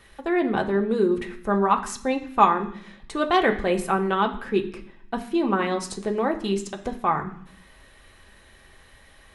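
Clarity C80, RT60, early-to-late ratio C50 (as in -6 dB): 15.0 dB, 0.65 s, 12.0 dB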